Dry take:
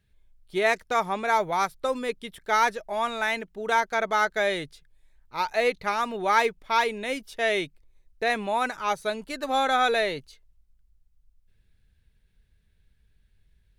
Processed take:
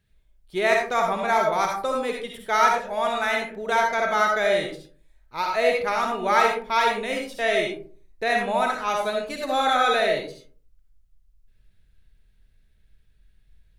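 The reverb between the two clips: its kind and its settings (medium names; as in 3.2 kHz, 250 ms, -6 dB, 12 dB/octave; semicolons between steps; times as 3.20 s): algorithmic reverb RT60 0.46 s, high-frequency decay 0.4×, pre-delay 25 ms, DRR 0.5 dB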